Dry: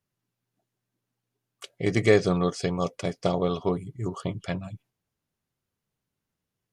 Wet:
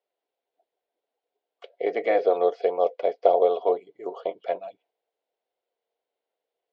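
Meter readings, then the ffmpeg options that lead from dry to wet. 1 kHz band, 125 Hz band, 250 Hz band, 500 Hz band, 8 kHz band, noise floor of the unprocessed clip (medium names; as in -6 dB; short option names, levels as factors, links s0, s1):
+7.0 dB, under -30 dB, -10.5 dB, +4.5 dB, under -25 dB, -85 dBFS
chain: -filter_complex "[0:a]afftfilt=real='re*lt(hypot(re,im),0.708)':imag='im*lt(hypot(re,im),0.708)':win_size=1024:overlap=0.75,acrossover=split=2500[s0][s1];[s1]acompressor=threshold=0.00355:ratio=4:attack=1:release=60[s2];[s0][s2]amix=inputs=2:normalize=0,highpass=f=410:w=0.5412,highpass=f=410:w=1.3066,equalizer=f=480:t=q:w=4:g=10,equalizer=f=700:t=q:w=4:g=10,equalizer=f=1200:t=q:w=4:g=-9,equalizer=f=1700:t=q:w=4:g=-6,equalizer=f=2600:t=q:w=4:g=-4,lowpass=f=3800:w=0.5412,lowpass=f=3800:w=1.3066,volume=1.19"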